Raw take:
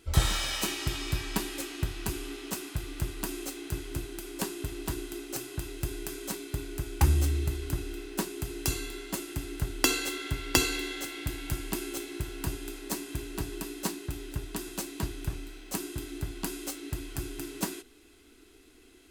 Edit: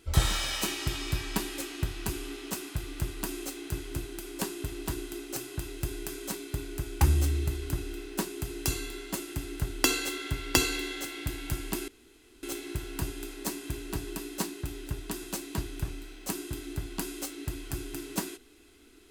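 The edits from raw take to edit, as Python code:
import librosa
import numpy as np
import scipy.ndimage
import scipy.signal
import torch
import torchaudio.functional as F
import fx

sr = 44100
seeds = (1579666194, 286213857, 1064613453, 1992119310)

y = fx.edit(x, sr, fx.insert_room_tone(at_s=11.88, length_s=0.55), tone=tone)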